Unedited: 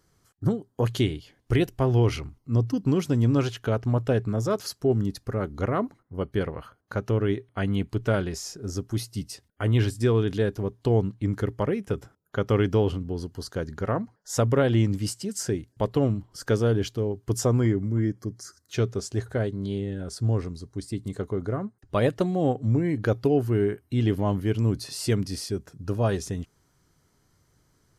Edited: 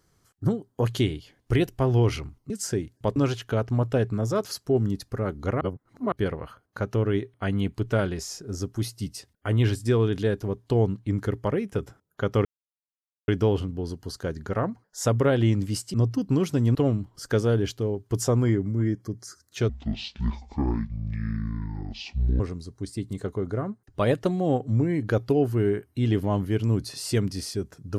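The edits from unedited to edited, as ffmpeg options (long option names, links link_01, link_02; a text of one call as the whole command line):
ffmpeg -i in.wav -filter_complex "[0:a]asplit=10[link_01][link_02][link_03][link_04][link_05][link_06][link_07][link_08][link_09][link_10];[link_01]atrim=end=2.502[link_11];[link_02]atrim=start=15.258:end=15.922[link_12];[link_03]atrim=start=3.308:end=5.762[link_13];[link_04]atrim=start=5.758:end=6.272,asetpts=PTS-STARTPTS,areverse[link_14];[link_05]atrim=start=6.268:end=12.6,asetpts=PTS-STARTPTS,afade=type=out:start_time=6.328:duration=0.004:curve=hsin,apad=pad_dur=0.83[link_15];[link_06]atrim=start=12.6:end=15.262,asetpts=PTS-STARTPTS,afade=type=in:duration=0.004:curve=hsin[link_16];[link_07]atrim=start=2.498:end=3.312[link_17];[link_08]atrim=start=15.918:end=18.864[link_18];[link_09]atrim=start=18.86:end=20.35,asetpts=PTS-STARTPTS,asetrate=24255,aresample=44100[link_19];[link_10]atrim=start=20.346[link_20];[link_11][link_12]acrossfade=duration=0.004:curve1=hsin:curve2=hsin[link_21];[link_21][link_13]acrossfade=duration=0.004:curve1=hsin:curve2=hsin[link_22];[link_22][link_14]acrossfade=duration=0.004:curve1=hsin:curve2=hsin[link_23];[link_15][link_16]concat=n=2:v=0:a=1[link_24];[link_23][link_24]acrossfade=duration=0.004:curve1=hsin:curve2=hsin[link_25];[link_25][link_17]acrossfade=duration=0.004:curve1=hsin:curve2=hsin[link_26];[link_26][link_18]acrossfade=duration=0.004:curve1=hsin:curve2=hsin[link_27];[link_27][link_19]acrossfade=duration=0.004:curve1=hsin:curve2=hsin[link_28];[link_28][link_20]acrossfade=duration=0.004:curve1=hsin:curve2=hsin" out.wav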